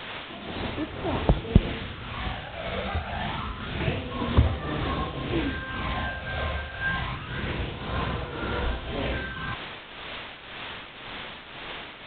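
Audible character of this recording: phasing stages 12, 0.27 Hz, lowest notch 300–2700 Hz; a quantiser's noise floor 6-bit, dither triangular; tremolo triangle 1.9 Hz, depth 65%; G.726

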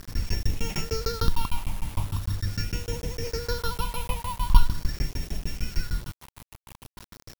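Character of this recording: a buzz of ramps at a fixed pitch in blocks of 8 samples; tremolo saw down 6.6 Hz, depth 100%; phasing stages 6, 0.42 Hz, lowest notch 410–1200 Hz; a quantiser's noise floor 8-bit, dither none

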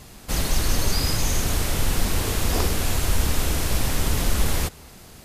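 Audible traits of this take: noise floor -45 dBFS; spectral tilt -3.5 dB/octave

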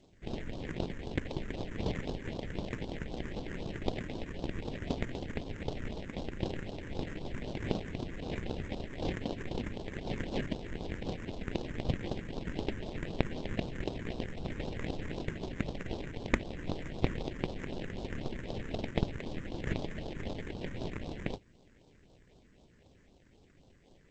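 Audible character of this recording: aliases and images of a low sample rate 1.3 kHz, jitter 20%; phasing stages 4, 3.9 Hz, lowest notch 710–1900 Hz; G.722

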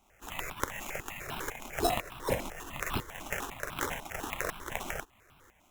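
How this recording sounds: tremolo saw up 2 Hz, depth 70%; aliases and images of a low sample rate 4.6 kHz, jitter 0%; notches that jump at a steady rate 10 Hz 470–1900 Hz

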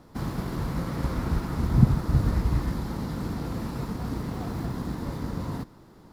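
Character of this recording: noise floor -52 dBFS; spectral tilt -8.0 dB/octave

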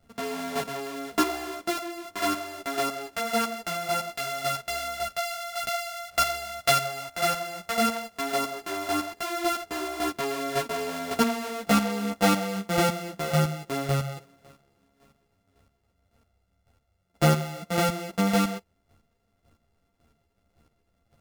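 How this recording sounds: a buzz of ramps at a fixed pitch in blocks of 64 samples; chopped level 1.8 Hz, depth 65%, duty 20%; a shimmering, thickened sound

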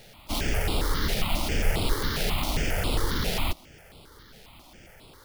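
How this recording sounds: aliases and images of a low sample rate 7.8 kHz, jitter 20%; notches that jump at a steady rate 7.4 Hz 290–6100 Hz

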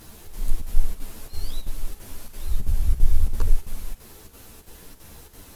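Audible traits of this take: a quantiser's noise floor 10-bit, dither triangular; chopped level 3 Hz, depth 60%, duty 80%; a shimmering, thickened sound

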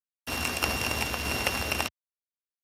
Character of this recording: a buzz of ramps at a fixed pitch in blocks of 16 samples; tremolo saw down 1.6 Hz, depth 45%; a quantiser's noise floor 6-bit, dither none; Speex

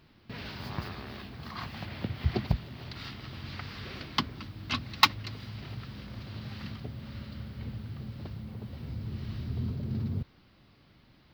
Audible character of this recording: noise floor -61 dBFS; spectral tilt -3.5 dB/octave

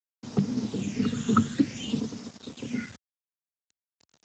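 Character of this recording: phasing stages 8, 0.56 Hz, lowest notch 670–2700 Hz; random-step tremolo, depth 75%; a quantiser's noise floor 8-bit, dither none; Speex

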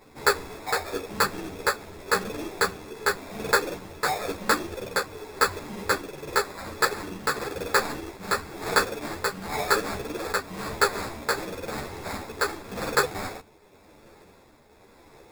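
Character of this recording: tremolo triangle 0.94 Hz, depth 50%; aliases and images of a low sample rate 3 kHz, jitter 0%; a shimmering, thickened sound

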